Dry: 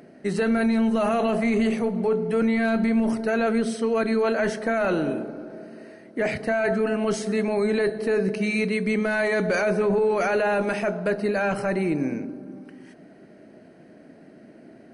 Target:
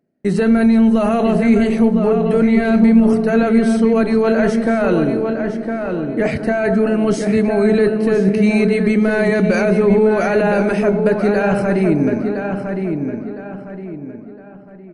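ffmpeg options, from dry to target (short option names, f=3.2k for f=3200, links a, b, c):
-filter_complex "[0:a]agate=range=-30dB:threshold=-43dB:ratio=16:detection=peak,lowshelf=f=360:g=9.5,asplit=2[a][b];[b]adelay=1010,lowpass=f=2.8k:p=1,volume=-5.5dB,asplit=2[c][d];[d]adelay=1010,lowpass=f=2.8k:p=1,volume=0.37,asplit=2[e][f];[f]adelay=1010,lowpass=f=2.8k:p=1,volume=0.37,asplit=2[g][h];[h]adelay=1010,lowpass=f=2.8k:p=1,volume=0.37[i];[a][c][e][g][i]amix=inputs=5:normalize=0,volume=3dB"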